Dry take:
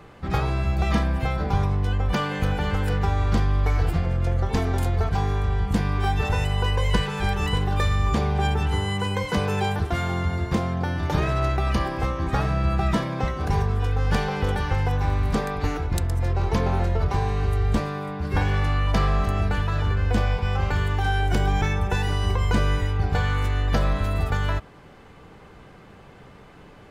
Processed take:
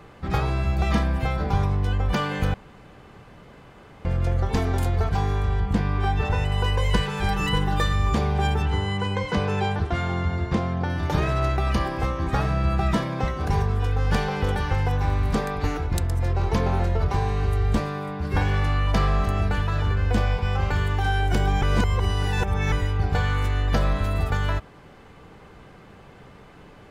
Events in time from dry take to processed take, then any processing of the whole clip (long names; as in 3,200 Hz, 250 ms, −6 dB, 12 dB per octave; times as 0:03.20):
0:02.54–0:04.05: fill with room tone
0:05.60–0:06.52: low-pass filter 3,300 Hz 6 dB per octave
0:07.28–0:07.93: comb filter 6.1 ms
0:08.62–0:10.90: high-frequency loss of the air 72 metres
0:21.63–0:22.72: reverse